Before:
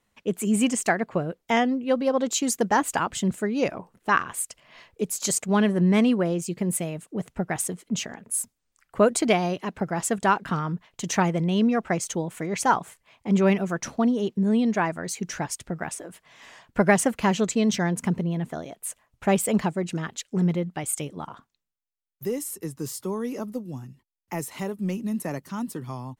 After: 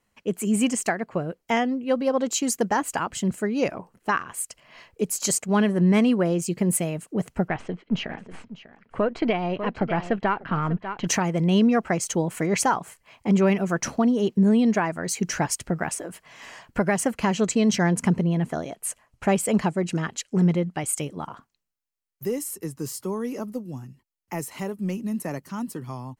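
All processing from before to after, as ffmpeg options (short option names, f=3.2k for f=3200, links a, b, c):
-filter_complex "[0:a]asettb=1/sr,asplit=3[a][b][c];[a]atrim=end=7.484[d];[b]atrim=start=7.48:end=11.07,asetpts=PTS-STARTPTS,afade=t=in:d=0.004:c=qsin,afade=t=out:st=3.586:d=0.004:c=qsin,aeval=exprs='if(lt(val(0),0),0.708*val(0),val(0))':c=same,lowpass=f=3.5k:w=0.5412,lowpass=f=3.5k:w=1.3066,aecho=1:1:595:0.158,atrim=end_sample=158319[e];[c]atrim=start=11.066[f];[d][e]acrossfade=d=0.004:c1=hsin:c2=qsin[g];[g][f]acrossfade=d=0.004:c1=qsin:c2=hsin,asettb=1/sr,asplit=3[h][i][j];[h]atrim=end=17.134[k];[i]atrim=start=17.13:end=20.95,asetpts=PTS-STARTPTS,afade=t=in:d=0.004:c=qsin,afade=t=out:st=3.816:d=0.004:c=qsin,deesser=0.3,lowpass=12k[l];[j]atrim=start=20.946[m];[k][l]acrossfade=d=0.004:c1=hsin:c2=qsin[n];[n][m]acrossfade=d=0.004:c1=qsin:c2=hsin,bandreject=f=3.6k:w=8.8,dynaudnorm=f=410:g=31:m=11.5dB,alimiter=limit=-12dB:level=0:latency=1:release=417"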